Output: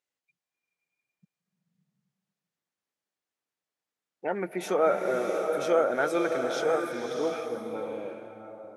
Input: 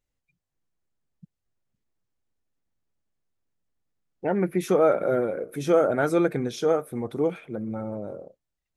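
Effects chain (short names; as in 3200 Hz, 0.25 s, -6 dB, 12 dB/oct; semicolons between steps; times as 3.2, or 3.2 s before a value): weighting filter A; bloom reverb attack 0.7 s, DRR 3.5 dB; gain -1.5 dB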